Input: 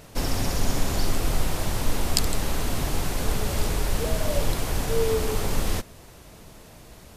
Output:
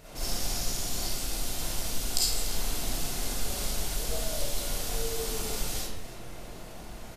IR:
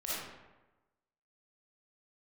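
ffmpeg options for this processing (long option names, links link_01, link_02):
-filter_complex "[0:a]acrossover=split=3500[link_01][link_02];[link_01]acompressor=threshold=-34dB:ratio=6[link_03];[link_03][link_02]amix=inputs=2:normalize=0,asplit=2[link_04][link_05];[link_05]adelay=291.5,volume=-12dB,highshelf=frequency=4000:gain=-6.56[link_06];[link_04][link_06]amix=inputs=2:normalize=0[link_07];[1:a]atrim=start_sample=2205,asetrate=48510,aresample=44100[link_08];[link_07][link_08]afir=irnorm=-1:irlink=0"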